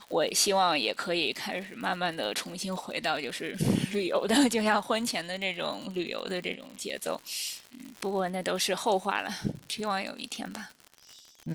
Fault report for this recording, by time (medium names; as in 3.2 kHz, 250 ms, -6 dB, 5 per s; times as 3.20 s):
crackle 99 per s -36 dBFS